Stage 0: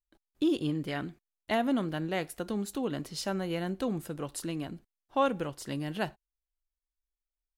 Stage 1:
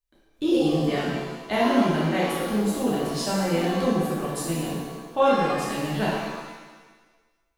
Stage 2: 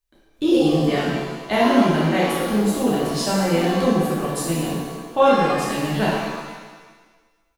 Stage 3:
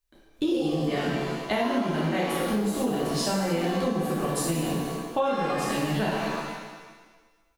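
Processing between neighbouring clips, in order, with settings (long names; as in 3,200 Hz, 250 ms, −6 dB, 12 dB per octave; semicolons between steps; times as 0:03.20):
reverb with rising layers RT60 1.3 s, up +7 semitones, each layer −8 dB, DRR −7 dB
single-tap delay 495 ms −24 dB; level +4.5 dB
downward compressor 6 to 1, threshold −23 dBFS, peak gain reduction 12 dB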